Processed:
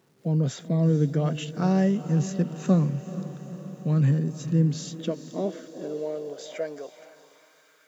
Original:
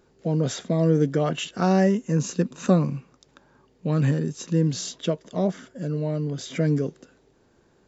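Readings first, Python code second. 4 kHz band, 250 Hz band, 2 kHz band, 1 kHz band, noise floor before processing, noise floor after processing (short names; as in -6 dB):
-6.0 dB, -1.5 dB, -6.0 dB, -5.5 dB, -62 dBFS, -60 dBFS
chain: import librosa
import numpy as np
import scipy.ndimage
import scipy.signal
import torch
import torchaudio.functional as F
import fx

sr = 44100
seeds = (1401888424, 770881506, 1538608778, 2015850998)

y = fx.echo_diffused(x, sr, ms=451, feedback_pct=63, wet_db=-13.0)
y = fx.quant_dither(y, sr, seeds[0], bits=10, dither='none')
y = fx.filter_sweep_highpass(y, sr, from_hz=140.0, to_hz=1300.0, start_s=4.41, end_s=7.79, q=2.5)
y = F.gain(torch.from_numpy(y), -6.5).numpy()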